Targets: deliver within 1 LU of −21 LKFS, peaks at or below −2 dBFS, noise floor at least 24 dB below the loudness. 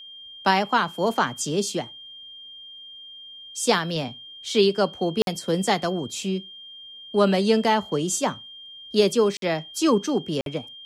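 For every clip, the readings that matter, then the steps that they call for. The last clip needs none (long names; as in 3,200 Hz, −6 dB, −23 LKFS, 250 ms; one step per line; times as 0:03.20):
number of dropouts 3; longest dropout 52 ms; interfering tone 3,200 Hz; level of the tone −40 dBFS; integrated loudness −23.5 LKFS; sample peak −7.0 dBFS; target loudness −21.0 LKFS
→ repair the gap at 0:05.22/0:09.37/0:10.41, 52 ms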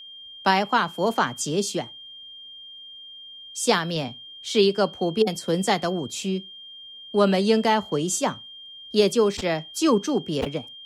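number of dropouts 0; interfering tone 3,200 Hz; level of the tone −40 dBFS
→ notch filter 3,200 Hz, Q 30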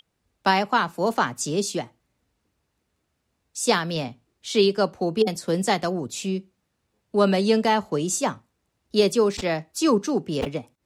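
interfering tone none found; integrated loudness −23.5 LKFS; sample peak −7.0 dBFS; target loudness −21.0 LKFS
→ level +2.5 dB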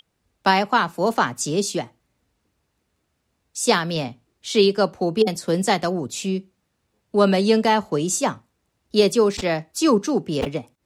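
integrated loudness −21.0 LKFS; sample peak −4.5 dBFS; background noise floor −73 dBFS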